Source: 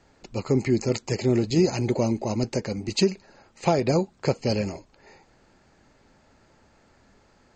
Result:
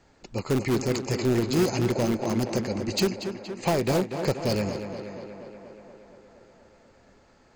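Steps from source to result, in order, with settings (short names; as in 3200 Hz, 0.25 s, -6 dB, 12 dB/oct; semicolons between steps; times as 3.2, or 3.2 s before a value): in parallel at -8 dB: wrapped overs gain 17 dB; on the sum: tape echo 0.237 s, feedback 75%, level -7.5 dB, low-pass 3900 Hz; gain -3.5 dB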